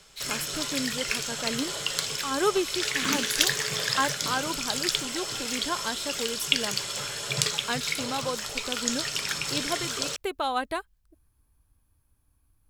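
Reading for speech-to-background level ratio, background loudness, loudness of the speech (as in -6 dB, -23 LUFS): -5.0 dB, -28.0 LUFS, -33.0 LUFS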